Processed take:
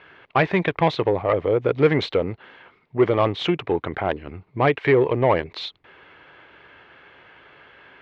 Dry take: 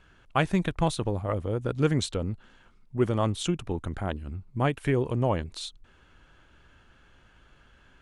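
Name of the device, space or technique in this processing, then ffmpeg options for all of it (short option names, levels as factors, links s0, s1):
overdrive pedal into a guitar cabinet: -filter_complex "[0:a]asplit=2[s0][s1];[s1]highpass=f=720:p=1,volume=7.94,asoftclip=type=tanh:threshold=0.299[s2];[s0][s2]amix=inputs=2:normalize=0,lowpass=f=1500:p=1,volume=0.501,highpass=99,equalizer=f=220:t=q:w=4:g=-8,equalizer=f=430:t=q:w=4:g=4,equalizer=f=1400:t=q:w=4:g=-4,equalizer=f=2100:t=q:w=4:g=7,lowpass=f=4300:w=0.5412,lowpass=f=4300:w=1.3066,volume=1.58"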